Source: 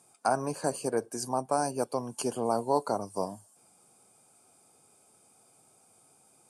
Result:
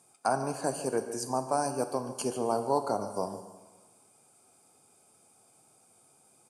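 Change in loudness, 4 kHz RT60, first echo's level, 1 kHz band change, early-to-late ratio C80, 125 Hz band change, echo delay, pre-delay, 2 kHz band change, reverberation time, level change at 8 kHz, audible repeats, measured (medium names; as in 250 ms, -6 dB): -0.5 dB, 1.3 s, -14.5 dB, -0.5 dB, 10.0 dB, -0.5 dB, 146 ms, 7 ms, -0.5 dB, 1.4 s, -0.5 dB, 1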